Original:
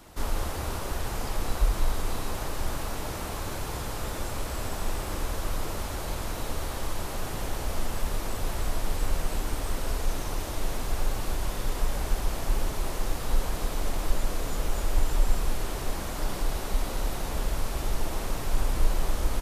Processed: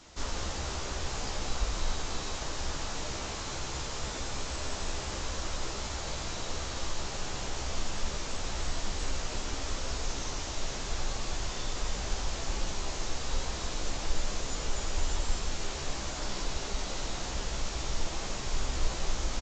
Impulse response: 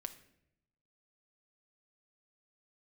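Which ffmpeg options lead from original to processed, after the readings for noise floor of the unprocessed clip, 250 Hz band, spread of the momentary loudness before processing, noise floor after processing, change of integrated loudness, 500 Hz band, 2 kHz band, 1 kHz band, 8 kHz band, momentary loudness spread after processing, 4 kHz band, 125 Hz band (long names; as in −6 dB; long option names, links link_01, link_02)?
−34 dBFS, −4.5 dB, 4 LU, −37 dBFS, −3.0 dB, −4.0 dB, −1.0 dB, −3.5 dB, +1.5 dB, 2 LU, +3.0 dB, −5.0 dB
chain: -filter_complex "[0:a]highshelf=frequency=2800:gain=11.5,aresample=16000,aresample=44100,asplit=2[link_01][link_02];[link_02]adelay=15,volume=-6.5dB[link_03];[link_01][link_03]amix=inputs=2:normalize=0,asplit=2[link_04][link_05];[1:a]atrim=start_sample=2205,adelay=93[link_06];[link_05][link_06]afir=irnorm=-1:irlink=0,volume=-6.5dB[link_07];[link_04][link_07]amix=inputs=2:normalize=0,volume=-6dB"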